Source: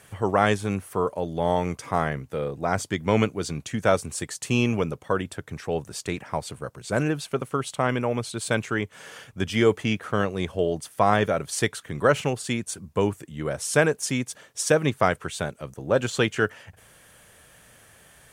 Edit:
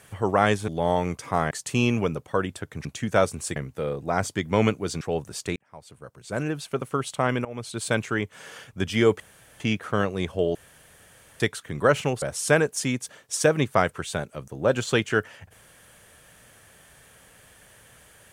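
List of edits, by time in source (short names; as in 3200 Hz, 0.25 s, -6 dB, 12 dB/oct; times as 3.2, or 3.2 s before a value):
0.68–1.28 cut
2.11–3.56 swap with 4.27–5.61
6.16–7.53 fade in
8.05–8.38 fade in, from -19 dB
9.8 insert room tone 0.40 s
10.75–11.6 room tone
12.42–13.48 cut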